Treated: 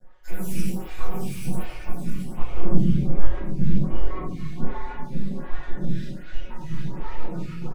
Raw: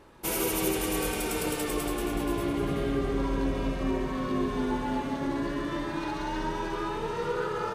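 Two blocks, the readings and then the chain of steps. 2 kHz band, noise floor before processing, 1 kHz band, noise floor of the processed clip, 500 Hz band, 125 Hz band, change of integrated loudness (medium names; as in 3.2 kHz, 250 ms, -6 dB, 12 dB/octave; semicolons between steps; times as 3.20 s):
-7.0 dB, -34 dBFS, -7.0 dB, -36 dBFS, -8.0 dB, +9.0 dB, -0.5 dB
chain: random holes in the spectrogram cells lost 72%; resonant low shelf 250 Hz +9 dB, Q 3; half-wave rectifier; comb 5.5 ms; simulated room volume 1000 m³, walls mixed, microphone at 7.8 m; lamp-driven phase shifter 1.3 Hz; trim -8.5 dB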